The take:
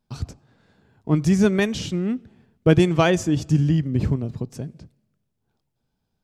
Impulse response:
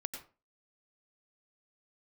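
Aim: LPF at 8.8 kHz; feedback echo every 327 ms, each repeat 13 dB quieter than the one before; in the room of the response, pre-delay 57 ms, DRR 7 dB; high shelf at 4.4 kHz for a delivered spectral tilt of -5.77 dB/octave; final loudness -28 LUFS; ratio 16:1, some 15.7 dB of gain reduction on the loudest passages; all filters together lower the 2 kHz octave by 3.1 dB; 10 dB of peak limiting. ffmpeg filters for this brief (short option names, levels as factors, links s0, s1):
-filter_complex "[0:a]lowpass=8800,equalizer=f=2000:t=o:g=-5.5,highshelf=f=4400:g=6.5,acompressor=threshold=0.0501:ratio=16,alimiter=level_in=1.12:limit=0.0631:level=0:latency=1,volume=0.891,aecho=1:1:327|654|981:0.224|0.0493|0.0108,asplit=2[s0][s1];[1:a]atrim=start_sample=2205,adelay=57[s2];[s1][s2]afir=irnorm=-1:irlink=0,volume=0.473[s3];[s0][s3]amix=inputs=2:normalize=0,volume=2"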